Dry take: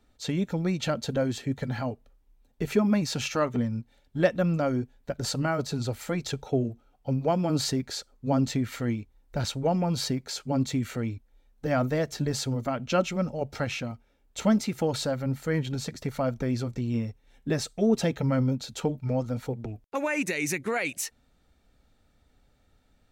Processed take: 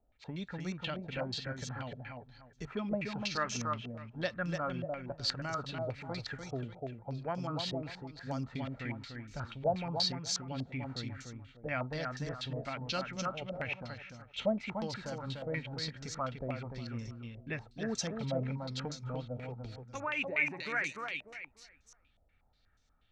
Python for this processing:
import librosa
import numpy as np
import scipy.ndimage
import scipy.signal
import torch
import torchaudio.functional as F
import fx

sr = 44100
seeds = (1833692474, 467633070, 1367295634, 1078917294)

y = fx.peak_eq(x, sr, hz=350.0, db=-8.0, octaves=2.5)
y = fx.echo_feedback(y, sr, ms=295, feedback_pct=29, wet_db=-5.0)
y = fx.filter_held_lowpass(y, sr, hz=8.3, low_hz=640.0, high_hz=6100.0)
y = F.gain(torch.from_numpy(y), -8.0).numpy()